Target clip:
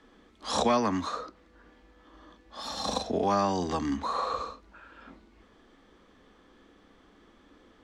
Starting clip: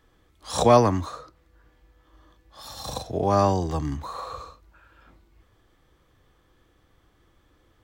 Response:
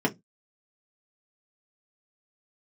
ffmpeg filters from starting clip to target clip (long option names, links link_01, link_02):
-filter_complex "[0:a]acrossover=split=93|1100[link_01][link_02][link_03];[link_01]acompressor=threshold=-41dB:ratio=4[link_04];[link_02]acompressor=threshold=-35dB:ratio=4[link_05];[link_03]acompressor=threshold=-34dB:ratio=4[link_06];[link_04][link_05][link_06]amix=inputs=3:normalize=0,lowpass=6200,lowshelf=frequency=160:width_type=q:width=3:gain=-7,asplit=2[link_07][link_08];[1:a]atrim=start_sample=2205[link_09];[link_08][link_09]afir=irnorm=-1:irlink=0,volume=-29dB[link_10];[link_07][link_10]amix=inputs=2:normalize=0,volume=4.5dB"